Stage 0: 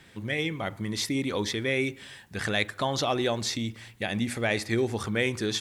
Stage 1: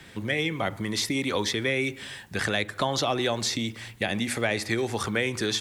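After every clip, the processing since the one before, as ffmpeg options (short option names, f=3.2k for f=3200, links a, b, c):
-filter_complex "[0:a]acrossover=split=260|570[a][b][c];[a]acompressor=threshold=-40dB:ratio=4[d];[b]acompressor=threshold=-38dB:ratio=4[e];[c]acompressor=threshold=-31dB:ratio=4[f];[d][e][f]amix=inputs=3:normalize=0,volume=6dB"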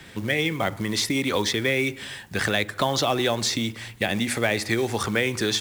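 -af "acrusher=bits=5:mode=log:mix=0:aa=0.000001,volume=3dB"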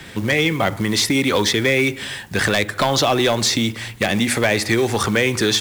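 -af "aeval=exprs='0.473*sin(PI/2*2.24*val(0)/0.473)':c=same,volume=-3.5dB"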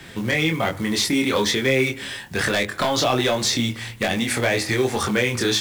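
-af "flanger=delay=22.5:depth=3:speed=1.2"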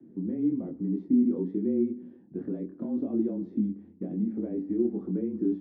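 -af "asuperpass=centerf=290:order=4:qfactor=2.2,afreqshift=-27"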